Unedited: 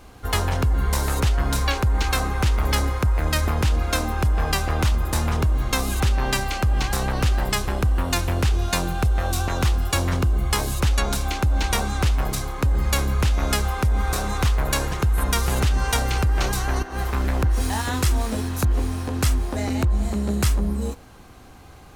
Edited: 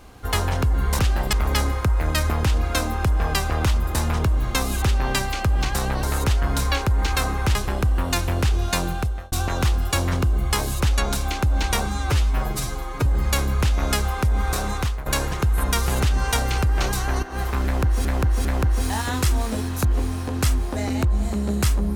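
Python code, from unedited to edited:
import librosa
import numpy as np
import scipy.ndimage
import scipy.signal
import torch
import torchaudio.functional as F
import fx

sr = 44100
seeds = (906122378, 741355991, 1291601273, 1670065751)

y = fx.edit(x, sr, fx.swap(start_s=0.99, length_s=1.52, other_s=7.21, other_length_s=0.34),
    fx.fade_out_span(start_s=8.91, length_s=0.41),
    fx.stretch_span(start_s=11.86, length_s=0.8, factor=1.5),
    fx.fade_out_to(start_s=14.3, length_s=0.36, floor_db=-13.5),
    fx.repeat(start_s=17.25, length_s=0.4, count=3), tone=tone)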